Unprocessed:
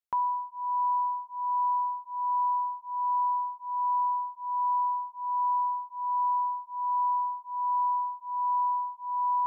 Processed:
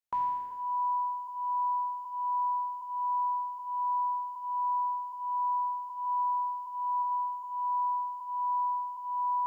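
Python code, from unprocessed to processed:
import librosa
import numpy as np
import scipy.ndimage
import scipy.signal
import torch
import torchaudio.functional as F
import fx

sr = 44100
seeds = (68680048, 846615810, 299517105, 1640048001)

y = fx.spec_trails(x, sr, decay_s=1.35)
y = fx.tilt_shelf(y, sr, db=-8.5, hz=970.0, at=(6.05, 7.02), fade=0.02)
y = fx.echo_crushed(y, sr, ms=82, feedback_pct=55, bits=10, wet_db=-13.0)
y = y * librosa.db_to_amplitude(-3.0)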